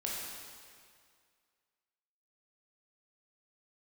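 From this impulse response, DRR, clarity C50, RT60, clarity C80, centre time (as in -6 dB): -4.5 dB, -1.0 dB, 2.1 s, 0.5 dB, 0.117 s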